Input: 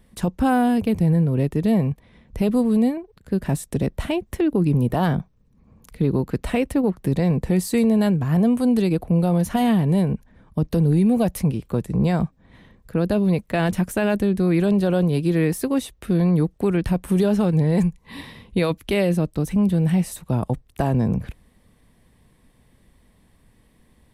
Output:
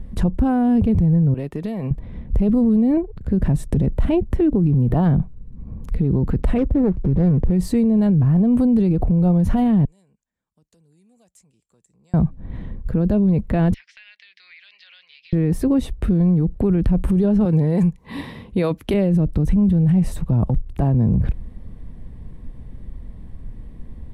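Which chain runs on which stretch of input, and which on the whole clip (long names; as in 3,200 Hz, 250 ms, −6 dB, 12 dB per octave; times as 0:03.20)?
0:01.34–0:01.91: high-pass filter 1,500 Hz 6 dB per octave + downward compressor, threshold −34 dBFS
0:06.58–0:07.51: running median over 41 samples + parametric band 210 Hz −4 dB 0.64 octaves
0:09.85–0:12.14: downward compressor 1.5 to 1, threshold −28 dBFS + resonant band-pass 7,400 Hz, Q 8
0:13.74–0:15.33: elliptic band-pass filter 2,000–5,200 Hz, stop band 80 dB + downward compressor 4 to 1, threshold −44 dBFS
0:17.45–0:18.94: high-pass filter 420 Hz 6 dB per octave + high-shelf EQ 7,100 Hz +7 dB
whole clip: spectral tilt −4 dB per octave; brickwall limiter −17 dBFS; level +6 dB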